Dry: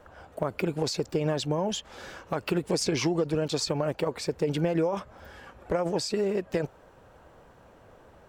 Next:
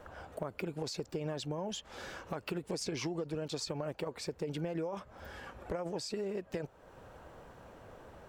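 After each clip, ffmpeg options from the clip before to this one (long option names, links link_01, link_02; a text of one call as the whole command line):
ffmpeg -i in.wav -af "acompressor=threshold=-45dB:ratio=2,volume=1dB" out.wav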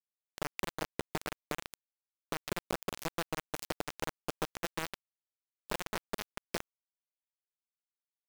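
ffmpeg -i in.wav -af "acrusher=bits=4:mix=0:aa=0.000001,volume=1.5dB" out.wav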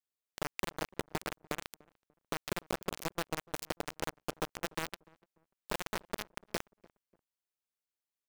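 ffmpeg -i in.wav -filter_complex "[0:a]asplit=2[link_01][link_02];[link_02]adelay=294,lowpass=frequency=990:poles=1,volume=-23dB,asplit=2[link_03][link_04];[link_04]adelay=294,lowpass=frequency=990:poles=1,volume=0.36[link_05];[link_01][link_03][link_05]amix=inputs=3:normalize=0" out.wav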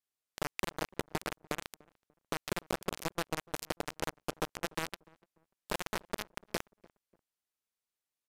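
ffmpeg -i in.wav -af "aresample=32000,aresample=44100,volume=1dB" out.wav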